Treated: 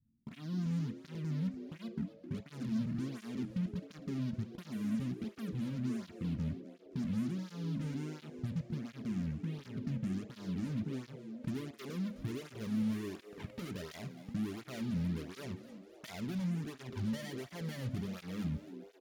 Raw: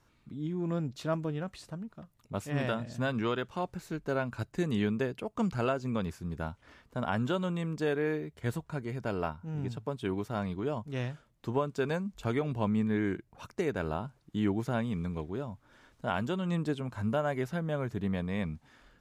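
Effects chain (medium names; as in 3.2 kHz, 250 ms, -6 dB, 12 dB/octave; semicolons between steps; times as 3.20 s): low-pass sweep 230 Hz -> 660 Hz, 10.40–13.67 s; in parallel at -5 dB: fuzz box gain 43 dB, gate -49 dBFS; on the sum: compression, threshold -26 dBFS, peak gain reduction 12 dB; amplifier tone stack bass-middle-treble 6-0-2; band-stop 7.9 kHz, Q 11; frequency-shifting echo 259 ms, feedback 54%, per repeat +100 Hz, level -14 dB; on a send at -10 dB: reverberation RT60 0.50 s, pre-delay 3 ms; on the sum: cancelling through-zero flanger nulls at 1.4 Hz, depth 3 ms; trim +9 dB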